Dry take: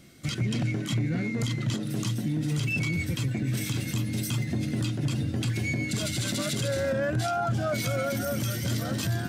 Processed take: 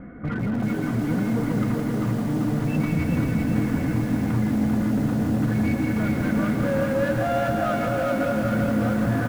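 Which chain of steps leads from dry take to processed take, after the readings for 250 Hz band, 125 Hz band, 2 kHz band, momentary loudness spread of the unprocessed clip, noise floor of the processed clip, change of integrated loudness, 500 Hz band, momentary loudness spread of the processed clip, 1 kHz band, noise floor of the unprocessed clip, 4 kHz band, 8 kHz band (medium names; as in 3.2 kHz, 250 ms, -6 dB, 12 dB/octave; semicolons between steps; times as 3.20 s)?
+9.0 dB, +2.0 dB, +2.0 dB, 2 LU, -27 dBFS, +5.0 dB, +6.0 dB, 2 LU, +7.0 dB, -33 dBFS, -8.5 dB, -9.0 dB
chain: steep low-pass 1.7 kHz 36 dB/octave; comb 4.1 ms, depth 57%; in parallel at -1.5 dB: compressor with a negative ratio -34 dBFS, ratio -1; on the sum: peak limiter -24 dBFS, peak gain reduction 8.5 dB; hard clipper -28.5 dBFS, distortion -15 dB; on a send: loudspeakers at several distances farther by 56 m -7 dB, 93 m -11 dB; on the sum: bit-crushed delay 392 ms, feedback 55%, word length 8-bit, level -3 dB; trim +6 dB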